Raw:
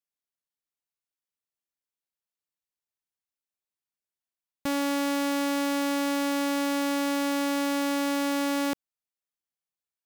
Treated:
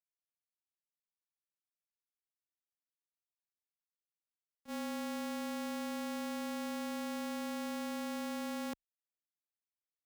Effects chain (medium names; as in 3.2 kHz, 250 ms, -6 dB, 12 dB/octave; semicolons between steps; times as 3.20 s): frequency shift -28 Hz; gate -24 dBFS, range -34 dB; trim +2 dB